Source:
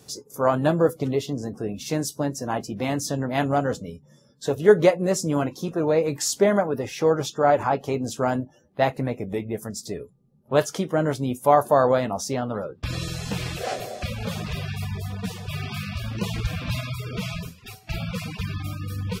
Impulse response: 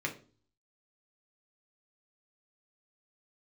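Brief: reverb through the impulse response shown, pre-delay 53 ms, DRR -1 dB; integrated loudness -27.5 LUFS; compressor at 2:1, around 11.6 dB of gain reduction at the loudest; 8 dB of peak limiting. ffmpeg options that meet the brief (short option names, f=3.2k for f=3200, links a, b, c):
-filter_complex "[0:a]acompressor=threshold=-32dB:ratio=2,alimiter=limit=-23.5dB:level=0:latency=1,asplit=2[a][b];[1:a]atrim=start_sample=2205,adelay=53[c];[b][c]afir=irnorm=-1:irlink=0,volume=-4dB[d];[a][d]amix=inputs=2:normalize=0,volume=3dB"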